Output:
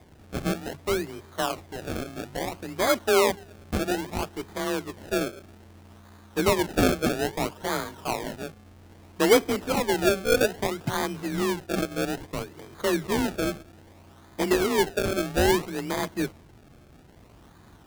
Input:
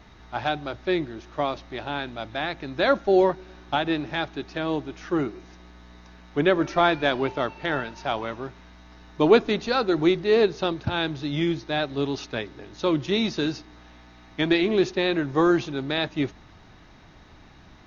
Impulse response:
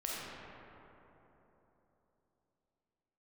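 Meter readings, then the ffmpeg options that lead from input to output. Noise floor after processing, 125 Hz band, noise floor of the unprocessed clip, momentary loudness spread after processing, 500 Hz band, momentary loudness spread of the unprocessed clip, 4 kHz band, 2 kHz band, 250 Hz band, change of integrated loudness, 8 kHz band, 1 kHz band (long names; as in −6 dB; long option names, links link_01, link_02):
−52 dBFS, −1.5 dB, −50 dBFS, 12 LU, −2.0 dB, 12 LU, −2.0 dB, −1.5 dB, −3.0 dB, −2.0 dB, can't be measured, −2.0 dB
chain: -af "afreqshift=29,acrusher=samples=31:mix=1:aa=0.000001:lfo=1:lforange=31:lforate=0.61,volume=-2dB"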